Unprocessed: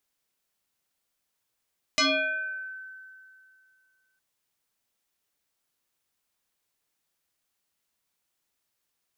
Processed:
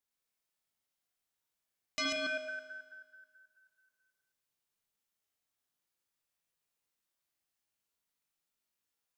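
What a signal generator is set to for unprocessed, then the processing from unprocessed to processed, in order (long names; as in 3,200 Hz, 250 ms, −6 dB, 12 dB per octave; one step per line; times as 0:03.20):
two-operator FM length 2.21 s, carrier 1,530 Hz, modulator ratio 0.59, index 5.8, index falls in 0.93 s exponential, decay 2.44 s, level −18.5 dB
delay that plays each chunk backwards 108 ms, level −1 dB
tuned comb filter 52 Hz, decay 1.4 s, harmonics all, mix 80%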